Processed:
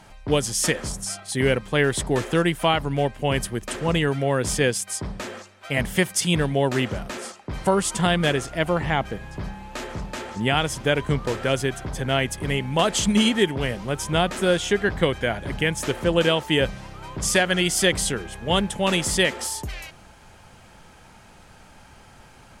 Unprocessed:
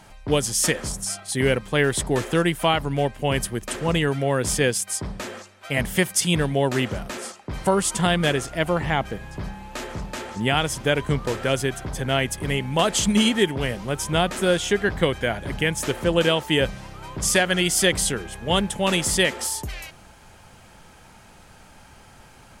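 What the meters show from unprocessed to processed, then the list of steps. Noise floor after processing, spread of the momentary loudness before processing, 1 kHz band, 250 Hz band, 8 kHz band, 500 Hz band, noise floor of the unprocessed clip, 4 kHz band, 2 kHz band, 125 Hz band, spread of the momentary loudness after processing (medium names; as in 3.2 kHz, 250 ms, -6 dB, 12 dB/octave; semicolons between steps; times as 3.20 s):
-49 dBFS, 13 LU, 0.0 dB, 0.0 dB, -2.0 dB, 0.0 dB, -49 dBFS, -0.5 dB, 0.0 dB, 0.0 dB, 13 LU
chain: treble shelf 10 kHz -6 dB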